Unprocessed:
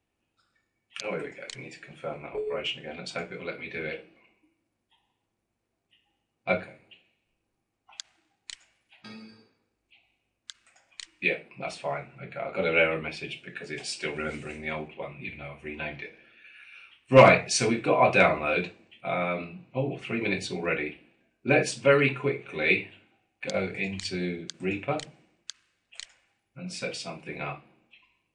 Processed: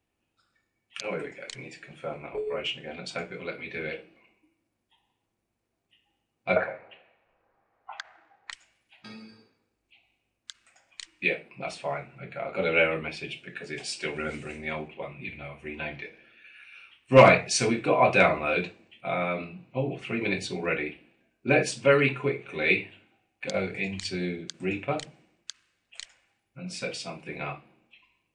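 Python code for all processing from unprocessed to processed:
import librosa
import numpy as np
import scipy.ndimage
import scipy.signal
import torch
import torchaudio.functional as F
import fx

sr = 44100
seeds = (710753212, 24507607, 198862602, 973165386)

y = fx.chain(x, sr, fx.lowpass(hz=3800.0, slope=12),
    fx.band_shelf(hz=940.0, db=15.0, octaves=2.4), at=(6.56, 8.52))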